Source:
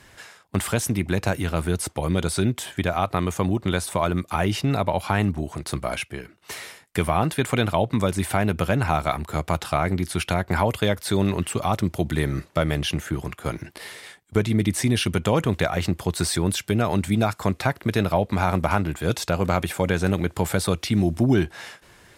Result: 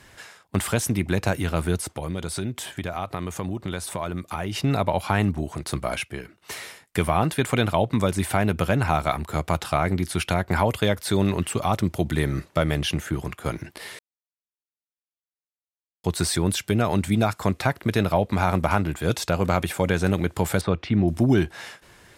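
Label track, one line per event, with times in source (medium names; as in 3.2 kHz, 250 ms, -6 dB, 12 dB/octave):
1.800000	4.560000	compression 2:1, threshold -29 dBFS
13.990000	16.040000	mute
20.610000	21.080000	low-pass 2.4 kHz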